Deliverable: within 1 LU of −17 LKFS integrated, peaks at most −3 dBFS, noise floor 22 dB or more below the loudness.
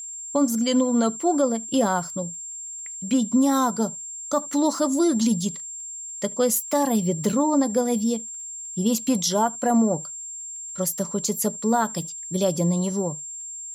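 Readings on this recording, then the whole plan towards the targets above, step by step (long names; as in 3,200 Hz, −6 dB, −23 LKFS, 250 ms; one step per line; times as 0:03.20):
crackle rate 18 per second; interfering tone 7,400 Hz; level of the tone −33 dBFS; integrated loudness −24.0 LKFS; sample peak −10.5 dBFS; target loudness −17.0 LKFS
→ click removal
notch filter 7,400 Hz, Q 30
level +7 dB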